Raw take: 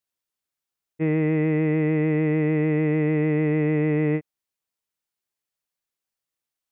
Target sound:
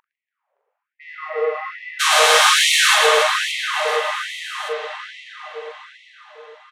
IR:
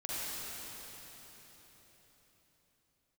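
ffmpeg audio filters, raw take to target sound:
-filter_complex "[0:a]lowpass=frequency=2500:width=0.5412,lowpass=frequency=2500:width=1.3066,equalizer=frequency=260:width=5:gain=11.5,aeval=exprs='val(0)+0.0158*(sin(2*PI*50*n/s)+sin(2*PI*2*50*n/s)/2+sin(2*PI*3*50*n/s)/3+sin(2*PI*4*50*n/s)/4+sin(2*PI*5*50*n/s)/5)':channel_layout=same,asplit=2[link_01][link_02];[link_02]highpass=frequency=720:poles=1,volume=16dB,asoftclip=type=tanh:threshold=-14.5dB[link_03];[link_01][link_03]amix=inputs=2:normalize=0,lowpass=frequency=1300:poles=1,volume=-6dB,asplit=3[link_04][link_05][link_06];[link_04]afade=type=out:start_time=1.99:duration=0.02[link_07];[link_05]aeval=exprs='0.178*sin(PI/2*10*val(0)/0.178)':channel_layout=same,afade=type=in:start_time=1.99:duration=0.02,afade=type=out:start_time=2.94:duration=0.02[link_08];[link_06]afade=type=in:start_time=2.94:duration=0.02[link_09];[link_07][link_08][link_09]amix=inputs=3:normalize=0,asplit=2[link_10][link_11];[link_11]adelay=42,volume=-6dB[link_12];[link_10][link_12]amix=inputs=2:normalize=0,aecho=1:1:110|286|567.6|1018|1739:0.631|0.398|0.251|0.158|0.1,asplit=2[link_13][link_14];[1:a]atrim=start_sample=2205,asetrate=29988,aresample=44100,lowpass=2600[link_15];[link_14][link_15]afir=irnorm=-1:irlink=0,volume=-6dB[link_16];[link_13][link_16]amix=inputs=2:normalize=0,afftfilt=real='re*gte(b*sr/1024,390*pow(1900/390,0.5+0.5*sin(2*PI*1.2*pts/sr)))':imag='im*gte(b*sr/1024,390*pow(1900/390,0.5+0.5*sin(2*PI*1.2*pts/sr)))':win_size=1024:overlap=0.75,volume=1dB"

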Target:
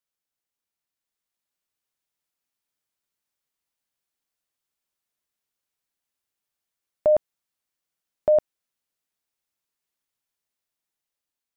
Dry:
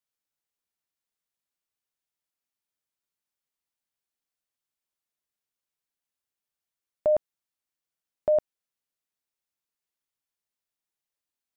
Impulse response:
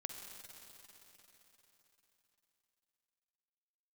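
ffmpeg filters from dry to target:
-af "dynaudnorm=framelen=520:gausssize=5:maxgain=4dB"

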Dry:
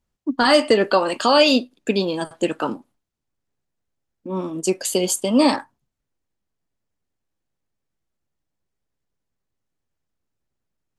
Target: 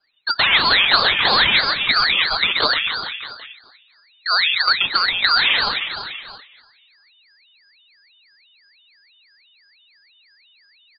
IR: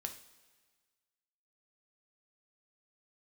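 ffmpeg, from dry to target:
-filter_complex "[0:a]asoftclip=type=hard:threshold=-16.5dB,aecho=1:1:5:0.8,acompressor=threshold=-21dB:ratio=6,asplit=2[link_01][link_02];[link_02]adelay=242,lowpass=frequency=1000:poles=1,volume=-11.5dB,asplit=2[link_03][link_04];[link_04]adelay=242,lowpass=frequency=1000:poles=1,volume=0.34,asplit=2[link_05][link_06];[link_06]adelay=242,lowpass=frequency=1000:poles=1,volume=0.34,asplit=2[link_07][link_08];[link_08]adelay=242,lowpass=frequency=1000:poles=1,volume=0.34[link_09];[link_01][link_03][link_05][link_07][link_09]amix=inputs=5:normalize=0,asplit=2[link_10][link_11];[1:a]atrim=start_sample=2205[link_12];[link_11][link_12]afir=irnorm=-1:irlink=0,volume=-11.5dB[link_13];[link_10][link_13]amix=inputs=2:normalize=0,lowpass=frequency=2800:width_type=q:width=0.5098,lowpass=frequency=2800:width_type=q:width=0.6013,lowpass=frequency=2800:width_type=q:width=0.9,lowpass=frequency=2800:width_type=q:width=2.563,afreqshift=-3300,asplit=2[link_14][link_15];[link_15]aecho=0:1:130|273|430.3|603.3|793.7:0.631|0.398|0.251|0.158|0.1[link_16];[link_14][link_16]amix=inputs=2:normalize=0,aeval=exprs='val(0)*sin(2*PI*1000*n/s+1000*0.7/3*sin(2*PI*3*n/s))':channel_layout=same,volume=8dB"

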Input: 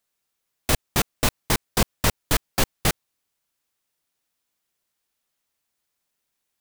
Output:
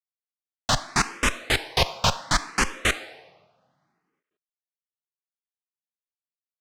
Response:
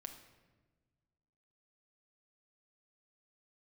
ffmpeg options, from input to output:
-filter_complex "[0:a]acrusher=bits=6:dc=4:mix=0:aa=0.000001,asplit=2[link_01][link_02];[link_02]highpass=570[link_03];[1:a]atrim=start_sample=2205[link_04];[link_03][link_04]afir=irnorm=-1:irlink=0,volume=6.5dB[link_05];[link_01][link_05]amix=inputs=2:normalize=0,dynaudnorm=framelen=450:gausssize=3:maxgain=4.5dB,lowpass=5700,asplit=2[link_06][link_07];[link_07]afreqshift=0.67[link_08];[link_06][link_08]amix=inputs=2:normalize=1"

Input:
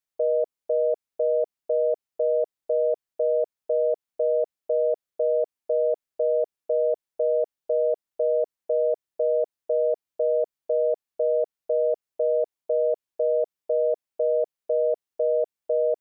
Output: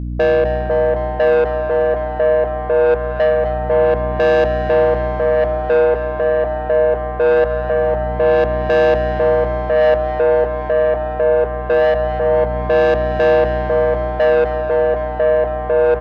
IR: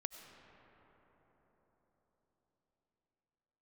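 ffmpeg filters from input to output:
-filter_complex "[0:a]bass=frequency=250:gain=-3,treble=frequency=4000:gain=-14,aeval=exprs='val(0)+0.0112*(sin(2*PI*60*n/s)+sin(2*PI*2*60*n/s)/2+sin(2*PI*3*60*n/s)/3+sin(2*PI*4*60*n/s)/4+sin(2*PI*5*60*n/s)/5)':channel_layout=same,aphaser=in_gain=1:out_gain=1:delay=2.9:decay=0.47:speed=0.23:type=sinusoidal,asoftclip=type=tanh:threshold=-22.5dB,asplit=8[link_01][link_02][link_03][link_04][link_05][link_06][link_07][link_08];[link_02]adelay=255,afreqshift=140,volume=-12.5dB[link_09];[link_03]adelay=510,afreqshift=280,volume=-16.5dB[link_10];[link_04]adelay=765,afreqshift=420,volume=-20.5dB[link_11];[link_05]adelay=1020,afreqshift=560,volume=-24.5dB[link_12];[link_06]adelay=1275,afreqshift=700,volume=-28.6dB[link_13];[link_07]adelay=1530,afreqshift=840,volume=-32.6dB[link_14];[link_08]adelay=1785,afreqshift=980,volume=-36.6dB[link_15];[link_01][link_09][link_10][link_11][link_12][link_13][link_14][link_15]amix=inputs=8:normalize=0,asplit=2[link_16][link_17];[1:a]atrim=start_sample=2205[link_18];[link_17][link_18]afir=irnorm=-1:irlink=0,volume=3dB[link_19];[link_16][link_19]amix=inputs=2:normalize=0,volume=6dB"

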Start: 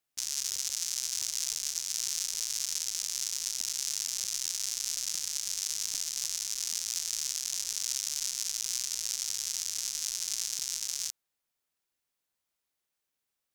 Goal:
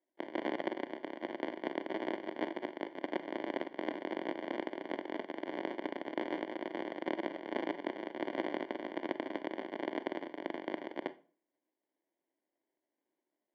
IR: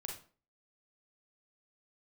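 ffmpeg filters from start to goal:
-filter_complex "[0:a]acrusher=samples=34:mix=1:aa=0.000001,highpass=frequency=300:width=0.5412,highpass=frequency=300:width=1.3066,equalizer=frequency=320:width_type=q:width=4:gain=4,equalizer=frequency=460:width_type=q:width=4:gain=-9,equalizer=frequency=780:width_type=q:width=4:gain=-6,equalizer=frequency=1200:width_type=q:width=4:gain=-4,equalizer=frequency=1700:width_type=q:width=4:gain=-5,equalizer=frequency=2600:width_type=q:width=4:gain=-4,lowpass=frequency=2700:width=0.5412,lowpass=frequency=2700:width=1.3066,asplit=2[link_01][link_02];[1:a]atrim=start_sample=2205[link_03];[link_02][link_03]afir=irnorm=-1:irlink=0,volume=-8dB[link_04];[link_01][link_04]amix=inputs=2:normalize=0,volume=-1dB"

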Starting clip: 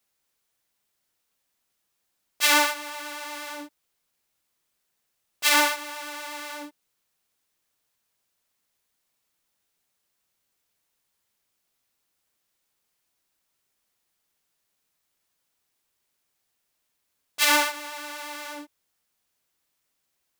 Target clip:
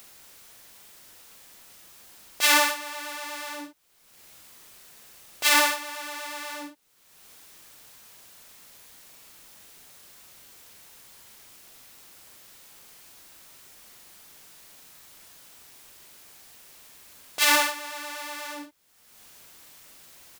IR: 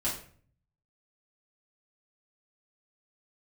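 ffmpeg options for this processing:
-filter_complex "[0:a]acompressor=mode=upward:threshold=-31dB:ratio=2.5,asplit=2[link_01][link_02];[link_02]adelay=42,volume=-7dB[link_03];[link_01][link_03]amix=inputs=2:normalize=0"

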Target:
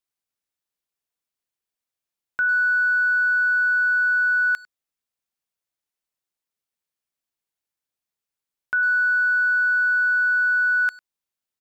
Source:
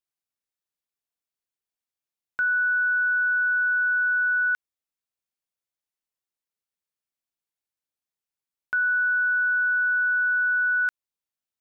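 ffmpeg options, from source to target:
ffmpeg -i in.wav -filter_complex "[0:a]asplit=2[link_01][link_02];[link_02]adelay=100,highpass=300,lowpass=3400,asoftclip=type=hard:threshold=-27.5dB,volume=-18dB[link_03];[link_01][link_03]amix=inputs=2:normalize=0,volume=2.5dB" out.wav

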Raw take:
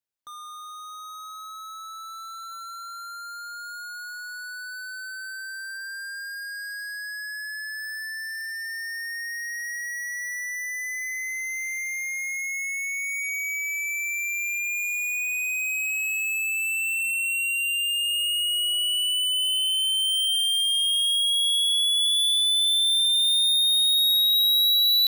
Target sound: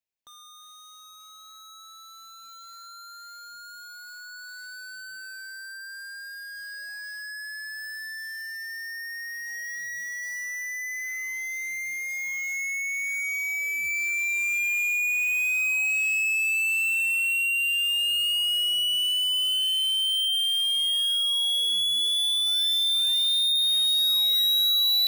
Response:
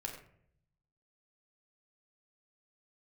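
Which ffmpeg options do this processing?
-af "equalizer=frequency=1250:width_type=o:width=0.33:gain=-11,equalizer=frequency=2500:width_type=o:width=0.33:gain=6,equalizer=frequency=10000:width_type=o:width=0.33:gain=-7,acrusher=bits=4:mode=log:mix=0:aa=0.000001,volume=-2.5dB"

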